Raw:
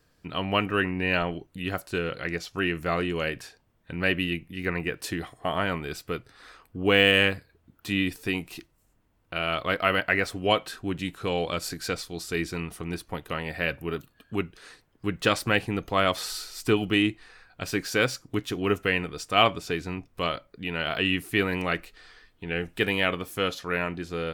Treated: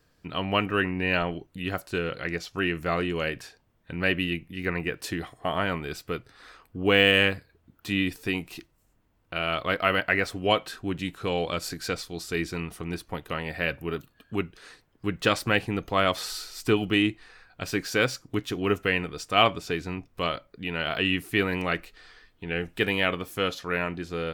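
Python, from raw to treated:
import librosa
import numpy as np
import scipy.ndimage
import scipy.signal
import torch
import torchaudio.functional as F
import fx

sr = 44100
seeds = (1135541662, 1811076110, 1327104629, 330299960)

y = fx.peak_eq(x, sr, hz=10000.0, db=-2.5, octaves=0.77)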